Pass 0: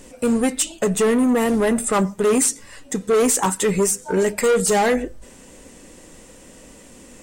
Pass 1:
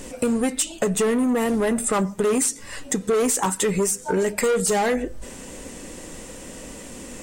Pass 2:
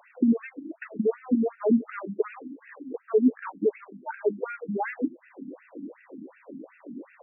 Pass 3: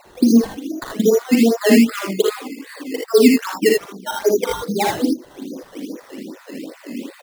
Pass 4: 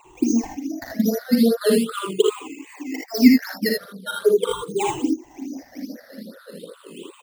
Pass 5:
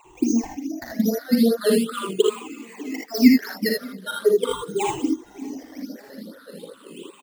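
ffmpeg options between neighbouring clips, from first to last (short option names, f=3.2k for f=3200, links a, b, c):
-af "acompressor=threshold=-29dB:ratio=3,volume=6.5dB"
-af "equalizer=f=310:t=o:w=1.2:g=14,afftfilt=real='re*between(b*sr/1024,210*pow(2000/210,0.5+0.5*sin(2*PI*2.7*pts/sr))/1.41,210*pow(2000/210,0.5+0.5*sin(2*PI*2.7*pts/sr))*1.41)':imag='im*between(b*sr/1024,210*pow(2000/210,0.5+0.5*sin(2*PI*2.7*pts/sr))/1.41,210*pow(2000/210,0.5+0.5*sin(2*PI*2.7*pts/sr))*1.41)':win_size=1024:overlap=0.75,volume=-5.5dB"
-filter_complex "[0:a]acrusher=samples=13:mix=1:aa=0.000001:lfo=1:lforange=13:lforate=2.5,asplit=2[a][b];[b]aecho=0:1:41|57|79:0.335|0.596|0.668[c];[a][c]amix=inputs=2:normalize=0,volume=8dB"
-af "afftfilt=real='re*pow(10,21/40*sin(2*PI*(0.68*log(max(b,1)*sr/1024/100)/log(2)-(-0.41)*(pts-256)/sr)))':imag='im*pow(10,21/40*sin(2*PI*(0.68*log(max(b,1)*sr/1024/100)/log(2)-(-0.41)*(pts-256)/sr)))':win_size=1024:overlap=0.75,volume=-8.5dB"
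-af "aecho=1:1:594|1188|1782|2376:0.0631|0.0366|0.0212|0.0123,volume=-1dB"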